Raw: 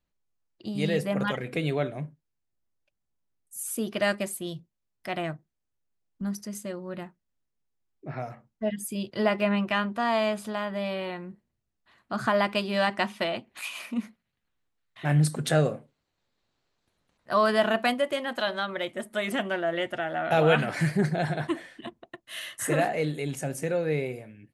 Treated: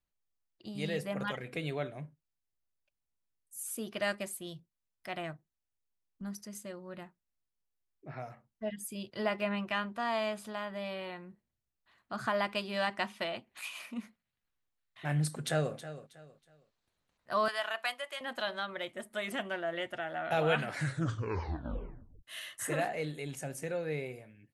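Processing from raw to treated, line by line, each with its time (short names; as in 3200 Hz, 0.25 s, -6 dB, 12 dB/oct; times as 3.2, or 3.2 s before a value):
15.31–15.74 echo throw 0.32 s, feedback 30%, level -13.5 dB
17.48–18.21 HPF 920 Hz
20.74 tape stop 1.49 s
whole clip: bell 250 Hz -4 dB 2.4 oct; gain -6 dB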